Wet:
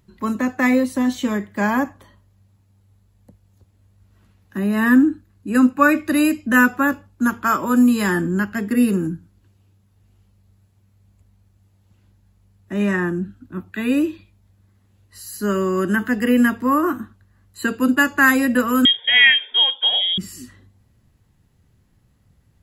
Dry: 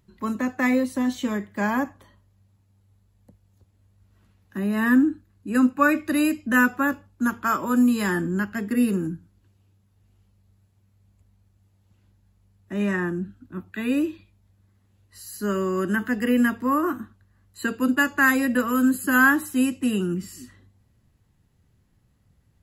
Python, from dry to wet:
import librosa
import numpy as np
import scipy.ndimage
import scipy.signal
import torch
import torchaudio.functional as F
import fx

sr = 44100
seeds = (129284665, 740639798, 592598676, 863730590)

y = fx.freq_invert(x, sr, carrier_hz=3500, at=(18.85, 20.18))
y = F.gain(torch.from_numpy(y), 4.5).numpy()